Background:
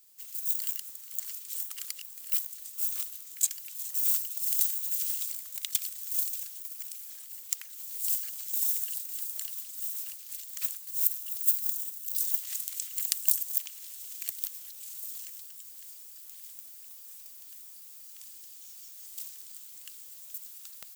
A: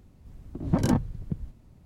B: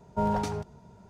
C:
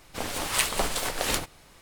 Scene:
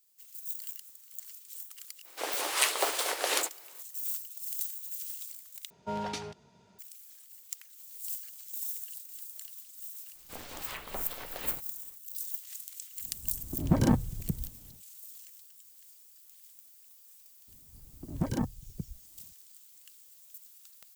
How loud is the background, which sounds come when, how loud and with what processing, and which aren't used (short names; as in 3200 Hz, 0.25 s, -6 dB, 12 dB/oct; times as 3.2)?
background -8.5 dB
2.03 add C -1.5 dB, fades 0.05 s + steep high-pass 340 Hz
5.7 replace with B -7 dB + weighting filter D
10.15 add C -13 dB + treble ducked by the level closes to 2300 Hz, closed at -21.5 dBFS
12.98 add A -1 dB, fades 0.10 s
17.48 add A -7 dB + reverb removal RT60 0.75 s